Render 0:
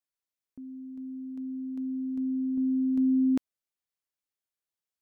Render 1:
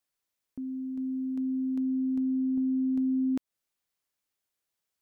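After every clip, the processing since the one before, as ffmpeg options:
-af "acompressor=threshold=0.0224:ratio=6,volume=2.11"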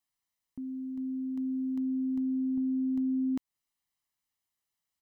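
-af "aecho=1:1:1:0.5,volume=0.708"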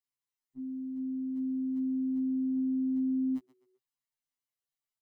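-filter_complex "[0:a]asplit=4[s0][s1][s2][s3];[s1]adelay=128,afreqshift=37,volume=0.168[s4];[s2]adelay=256,afreqshift=74,volume=0.0569[s5];[s3]adelay=384,afreqshift=111,volume=0.0195[s6];[s0][s4][s5][s6]amix=inputs=4:normalize=0,afftfilt=real='re*2.45*eq(mod(b,6),0)':imag='im*2.45*eq(mod(b,6),0)':win_size=2048:overlap=0.75,volume=0.501"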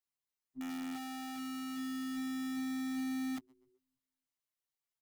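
-filter_complex "[0:a]acrossover=split=100|260[s0][s1][s2];[s0]aecho=1:1:294|588|882:0.266|0.0665|0.0166[s3];[s2]aeval=exprs='(mod(106*val(0)+1,2)-1)/106':c=same[s4];[s3][s1][s4]amix=inputs=3:normalize=0,volume=0.794"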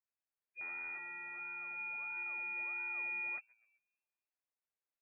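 -filter_complex "[0:a]acrossover=split=260[s0][s1];[s0]acrusher=samples=23:mix=1:aa=0.000001:lfo=1:lforange=13.8:lforate=1.5[s2];[s2][s1]amix=inputs=2:normalize=0,lowpass=f=2300:t=q:w=0.5098,lowpass=f=2300:t=q:w=0.6013,lowpass=f=2300:t=q:w=0.9,lowpass=f=2300:t=q:w=2.563,afreqshift=-2700,volume=0.708"

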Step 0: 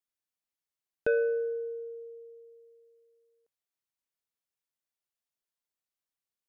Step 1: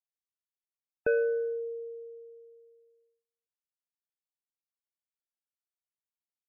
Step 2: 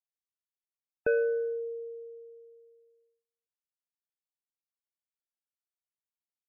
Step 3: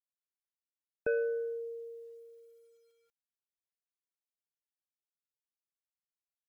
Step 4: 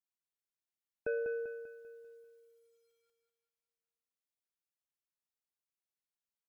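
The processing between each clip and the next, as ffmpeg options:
-af "afftdn=nr=27:nf=-46"
-af anull
-af "acrusher=bits=11:mix=0:aa=0.000001,volume=0.596"
-af "aecho=1:1:196|392|588|784|980|1176:0.447|0.21|0.0987|0.0464|0.0218|0.0102,volume=0.596"

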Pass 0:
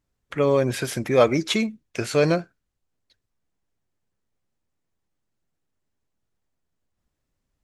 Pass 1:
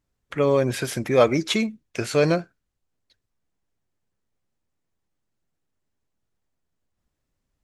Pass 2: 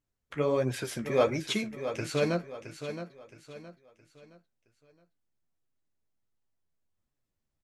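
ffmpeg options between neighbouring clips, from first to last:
-af anull
-af "flanger=delay=6.8:depth=7.8:regen=36:speed=1.4:shape=triangular,aecho=1:1:668|1336|2004|2672:0.316|0.114|0.041|0.0148,volume=0.631"

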